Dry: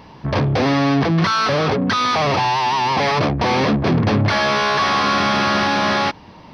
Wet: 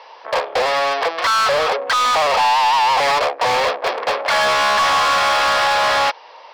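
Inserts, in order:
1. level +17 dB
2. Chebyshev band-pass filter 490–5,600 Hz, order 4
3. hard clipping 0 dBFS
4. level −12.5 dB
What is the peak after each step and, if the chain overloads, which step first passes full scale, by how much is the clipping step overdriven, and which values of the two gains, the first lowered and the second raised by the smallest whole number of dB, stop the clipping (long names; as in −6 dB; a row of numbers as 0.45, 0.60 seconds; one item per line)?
+12.0, +9.0, 0.0, −12.5 dBFS
step 1, 9.0 dB
step 1 +8 dB, step 4 −3.5 dB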